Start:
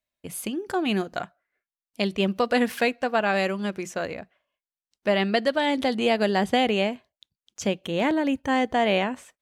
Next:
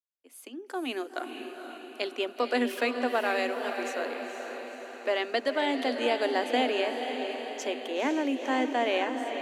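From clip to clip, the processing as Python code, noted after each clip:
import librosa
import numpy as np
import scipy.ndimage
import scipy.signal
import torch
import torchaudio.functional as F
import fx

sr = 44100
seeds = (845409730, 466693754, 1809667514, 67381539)

y = fx.fade_in_head(x, sr, length_s=1.08)
y = scipy.signal.sosfilt(scipy.signal.cheby1(8, 1.0, 240.0, 'highpass', fs=sr, output='sos'), y)
y = fx.echo_diffused(y, sr, ms=491, feedback_pct=59, wet_db=-6.5)
y = y * 10.0 ** (-4.5 / 20.0)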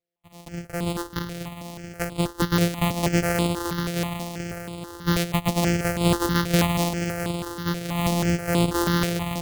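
y = np.r_[np.sort(x[:len(x) // 256 * 256].reshape(-1, 256), axis=1).ravel(), x[len(x) // 256 * 256:]]
y = fx.phaser_held(y, sr, hz=6.2, low_hz=260.0, high_hz=5900.0)
y = y * 10.0 ** (8.0 / 20.0)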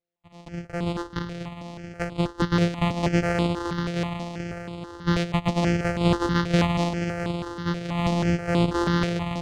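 y = fx.air_absorb(x, sr, metres=120.0)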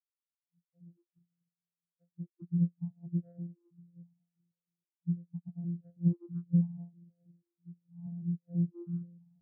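y = fx.spectral_expand(x, sr, expansion=4.0)
y = y * 10.0 ** (-9.0 / 20.0)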